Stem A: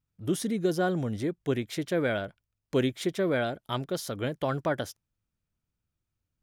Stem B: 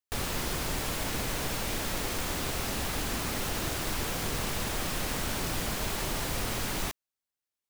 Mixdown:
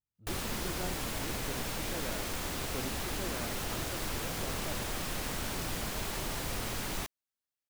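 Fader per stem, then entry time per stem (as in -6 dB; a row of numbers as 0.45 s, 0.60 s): -16.0 dB, -4.0 dB; 0.00 s, 0.15 s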